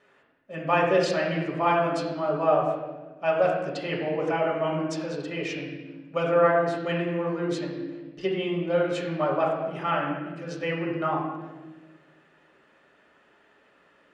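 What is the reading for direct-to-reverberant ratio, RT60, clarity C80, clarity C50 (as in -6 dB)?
-4.5 dB, 1.3 s, 5.0 dB, 3.0 dB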